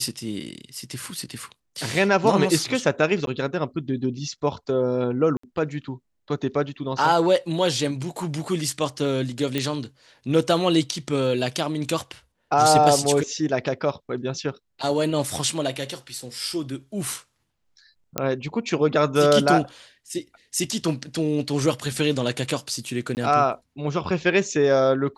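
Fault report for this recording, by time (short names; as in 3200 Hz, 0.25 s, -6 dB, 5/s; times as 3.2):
3.26–3.27 gap
5.37–5.43 gap 64 ms
9.58 pop -10 dBFS
18.18 pop -7 dBFS
23.15–23.17 gap 19 ms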